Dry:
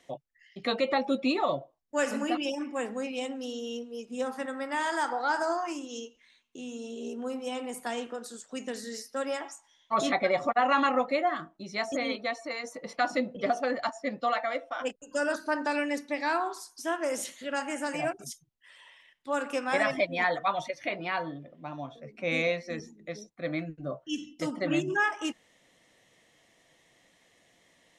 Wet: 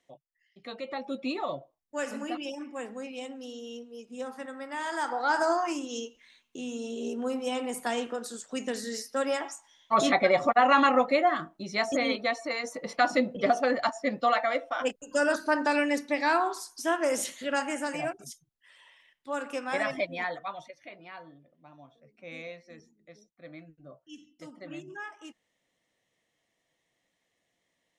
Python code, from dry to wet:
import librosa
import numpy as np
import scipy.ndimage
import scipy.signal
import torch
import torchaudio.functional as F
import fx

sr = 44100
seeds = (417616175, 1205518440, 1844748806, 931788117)

y = fx.gain(x, sr, db=fx.line((0.65, -12.5), (1.28, -5.0), (4.75, -5.0), (5.43, 3.5), (17.53, 3.5), (18.19, -3.0), (20.05, -3.0), (20.85, -14.0)))